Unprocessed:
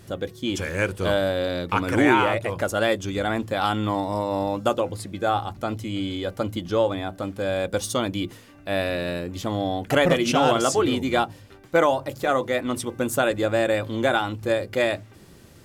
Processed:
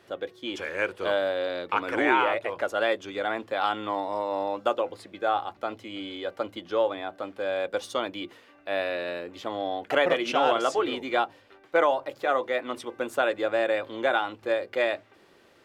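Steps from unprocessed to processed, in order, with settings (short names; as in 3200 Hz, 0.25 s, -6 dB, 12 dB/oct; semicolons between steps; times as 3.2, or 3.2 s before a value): three-band isolator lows -21 dB, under 330 Hz, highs -15 dB, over 4100 Hz; gain -2 dB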